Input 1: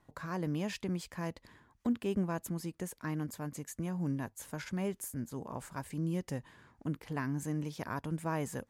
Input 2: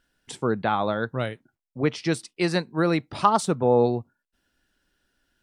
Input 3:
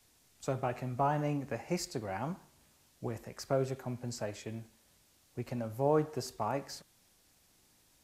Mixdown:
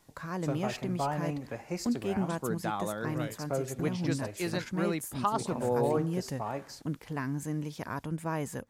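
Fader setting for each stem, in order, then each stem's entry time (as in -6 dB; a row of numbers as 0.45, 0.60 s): +1.5, -10.0, -1.5 dB; 0.00, 2.00, 0.00 s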